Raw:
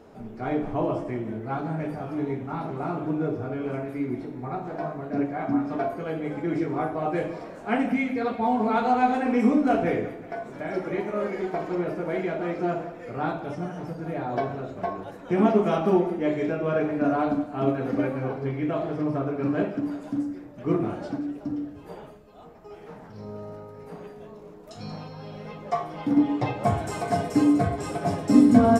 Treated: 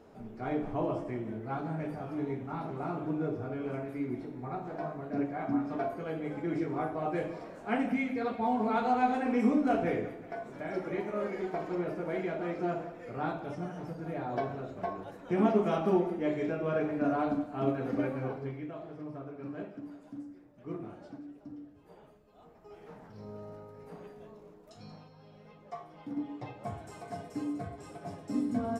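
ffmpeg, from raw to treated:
ffmpeg -i in.wav -af "volume=2.5dB,afade=type=out:start_time=18.27:duration=0.44:silence=0.334965,afade=type=in:start_time=21.9:duration=0.95:silence=0.375837,afade=type=out:start_time=24.26:duration=0.85:silence=0.354813" out.wav

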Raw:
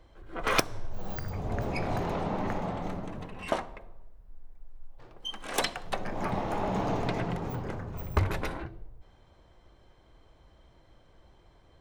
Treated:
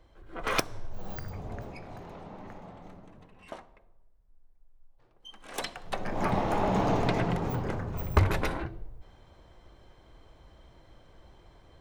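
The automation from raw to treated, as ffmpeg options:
ffmpeg -i in.wav -af "volume=14.5dB,afade=type=out:start_time=1.19:duration=0.62:silence=0.281838,afade=type=in:start_time=5.18:duration=0.63:silence=0.354813,afade=type=in:start_time=5.81:duration=0.43:silence=0.398107" out.wav

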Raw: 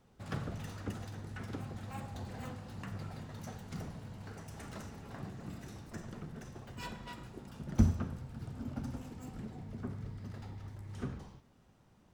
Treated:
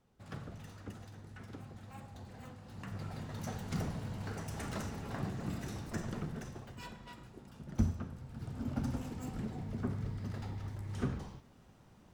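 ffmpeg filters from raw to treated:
ffmpeg -i in.wav -af "volume=15dB,afade=type=in:start_time=2.57:duration=1.16:silence=0.237137,afade=type=out:start_time=6.19:duration=0.65:silence=0.298538,afade=type=in:start_time=8.15:duration=0.68:silence=0.354813" out.wav

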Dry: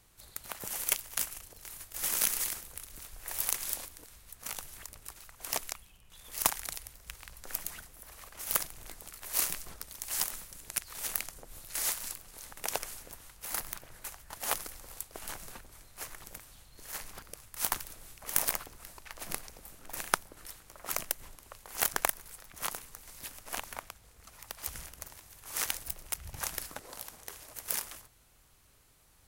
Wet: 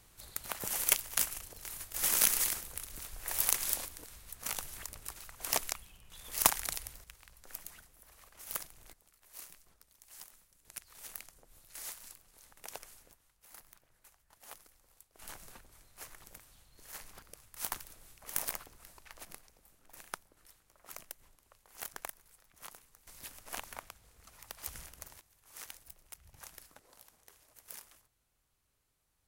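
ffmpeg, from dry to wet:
ffmpeg -i in.wav -af "asetnsamples=nb_out_samples=441:pad=0,asendcmd='7.04 volume volume -9dB;8.93 volume volume -19.5dB;10.65 volume volume -12dB;13.13 volume volume -19dB;15.19 volume volume -6.5dB;19.25 volume volume -14dB;23.07 volume volume -4dB;25.21 volume volume -15dB',volume=2dB" out.wav

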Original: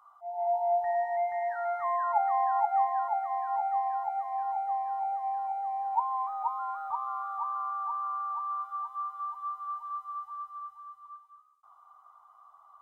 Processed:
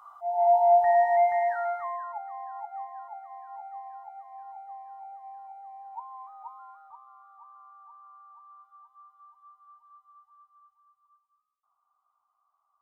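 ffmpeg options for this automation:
ffmpeg -i in.wav -af "volume=8dB,afade=type=out:start_time=1.24:duration=0.64:silence=0.251189,afade=type=out:start_time=1.88:duration=0.32:silence=0.398107,afade=type=out:start_time=6.52:duration=0.54:silence=0.473151" out.wav

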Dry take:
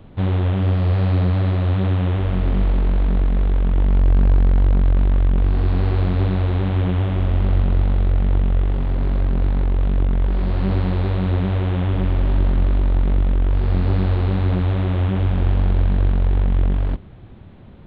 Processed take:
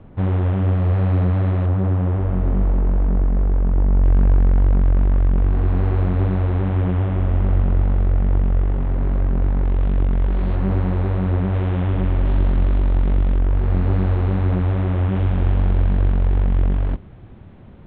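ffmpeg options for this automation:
ffmpeg -i in.wav -af "asetnsamples=nb_out_samples=441:pad=0,asendcmd='1.66 lowpass f 1300;4.02 lowpass f 2000;9.65 lowpass f 3000;10.56 lowpass f 2000;11.54 lowpass f 2700;12.25 lowpass f 3500;13.39 lowpass f 2300;15.12 lowpass f 3000',lowpass=2000" out.wav

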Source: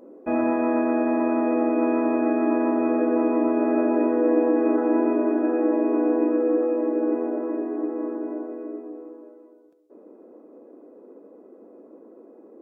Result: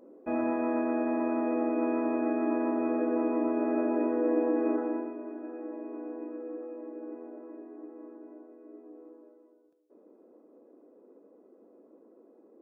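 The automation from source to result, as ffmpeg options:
ffmpeg -i in.wav -af "volume=1dB,afade=type=out:start_time=4.71:duration=0.41:silence=0.281838,afade=type=in:start_time=8.61:duration=0.47:silence=0.398107" out.wav

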